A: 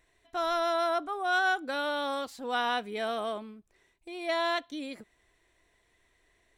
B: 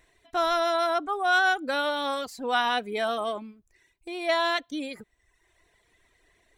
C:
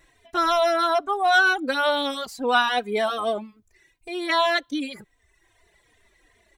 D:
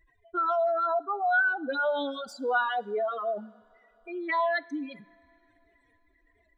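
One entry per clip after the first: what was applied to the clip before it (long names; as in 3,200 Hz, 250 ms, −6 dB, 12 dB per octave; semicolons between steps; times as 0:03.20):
reverb reduction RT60 0.91 s; level +6 dB
barber-pole flanger 3.1 ms −2.6 Hz; level +7 dB
expanding power law on the bin magnitudes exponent 2.4; coupled-rooms reverb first 0.49 s, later 4.5 s, from −18 dB, DRR 17.5 dB; level −5.5 dB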